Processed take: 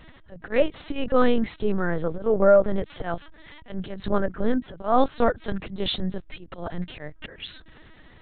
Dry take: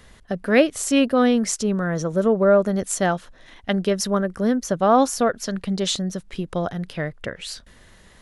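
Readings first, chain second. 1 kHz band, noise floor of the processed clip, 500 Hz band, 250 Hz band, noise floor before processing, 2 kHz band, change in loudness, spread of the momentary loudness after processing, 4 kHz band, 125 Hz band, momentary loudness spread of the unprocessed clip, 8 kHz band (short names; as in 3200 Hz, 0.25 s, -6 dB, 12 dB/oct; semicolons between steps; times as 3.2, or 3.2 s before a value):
-4.0 dB, -51 dBFS, -2.5 dB, -6.5 dB, -51 dBFS, -5.5 dB, -3.5 dB, 18 LU, -5.0 dB, -5.5 dB, 13 LU, under -40 dB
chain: auto swell 0.186 s; hum 50 Hz, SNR 31 dB; LPC vocoder at 8 kHz pitch kept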